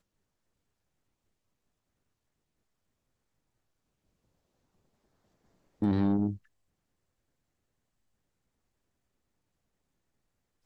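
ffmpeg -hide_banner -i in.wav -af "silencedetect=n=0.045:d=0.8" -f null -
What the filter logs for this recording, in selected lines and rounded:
silence_start: 0.00
silence_end: 5.82 | silence_duration: 5.82
silence_start: 6.30
silence_end: 10.66 | silence_duration: 4.36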